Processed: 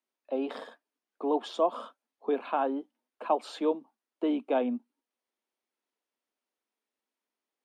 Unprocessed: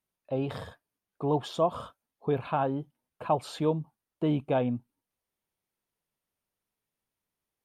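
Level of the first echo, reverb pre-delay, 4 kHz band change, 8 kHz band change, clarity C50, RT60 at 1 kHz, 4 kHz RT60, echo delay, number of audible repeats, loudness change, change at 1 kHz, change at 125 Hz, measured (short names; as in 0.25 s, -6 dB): none, none, -1.5 dB, n/a, none, none, none, none, none, -1.0 dB, 0.0 dB, under -30 dB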